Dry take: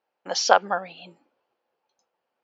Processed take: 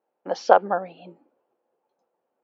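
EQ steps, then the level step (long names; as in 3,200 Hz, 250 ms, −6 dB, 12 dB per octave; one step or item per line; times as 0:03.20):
resonant band-pass 350 Hz, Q 0.74
+6.0 dB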